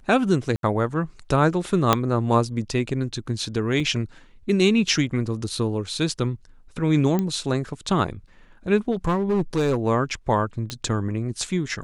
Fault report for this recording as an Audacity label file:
0.560000	0.630000	dropout 72 ms
1.930000	1.930000	pop -2 dBFS
3.800000	3.800000	dropout 2.3 ms
7.190000	7.190000	pop -12 dBFS
8.910000	9.780000	clipped -17 dBFS
10.700000	10.700000	pop -14 dBFS

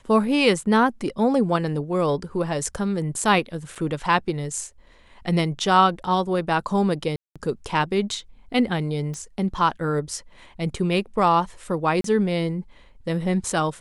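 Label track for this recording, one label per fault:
3.750000	3.760000	dropout 6.4 ms
7.160000	7.360000	dropout 196 ms
9.140000	9.140000	pop -22 dBFS
12.010000	12.040000	dropout 33 ms

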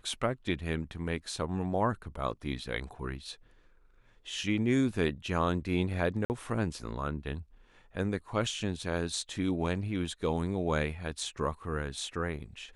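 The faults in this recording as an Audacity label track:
6.250000	6.300000	dropout 49 ms

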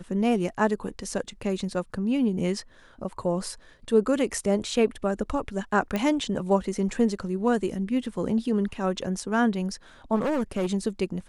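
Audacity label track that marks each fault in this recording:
5.960000	5.960000	pop -14 dBFS
10.150000	10.660000	clipped -22 dBFS

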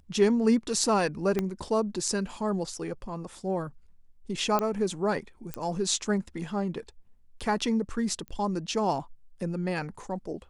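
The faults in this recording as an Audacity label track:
1.390000	1.390000	pop -14 dBFS
4.590000	4.590000	pop -13 dBFS
5.540000	5.540000	pop -16 dBFS
8.280000	8.280000	pop -27 dBFS

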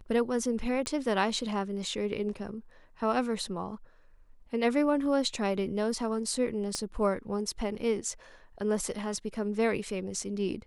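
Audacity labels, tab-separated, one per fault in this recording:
0.860000	0.860000	pop -21 dBFS
6.750000	6.750000	pop -18 dBFS

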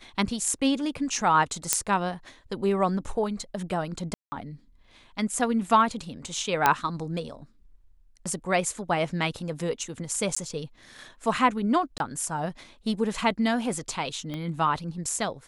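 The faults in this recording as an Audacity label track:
1.730000	1.730000	pop -2 dBFS
4.140000	4.320000	dropout 180 ms
6.660000	6.660000	pop -5 dBFS
10.350000	10.370000	dropout 15 ms
11.980000	12.000000	dropout 21 ms
14.340000	14.340000	pop -21 dBFS

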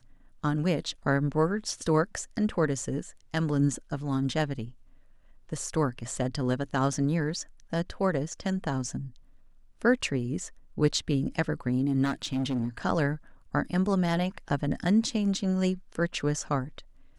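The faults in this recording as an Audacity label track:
12.040000	12.780000	clipped -24.5 dBFS

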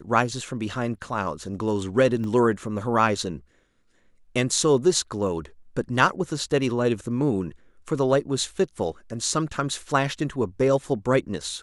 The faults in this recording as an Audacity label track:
2.240000	2.240000	dropout 2.1 ms

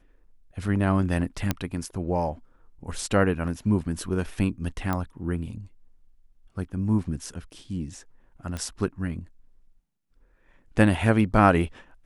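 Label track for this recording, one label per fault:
1.510000	1.510000	pop -9 dBFS
4.930000	4.930000	pop -14 dBFS
8.570000	8.570000	pop -19 dBFS

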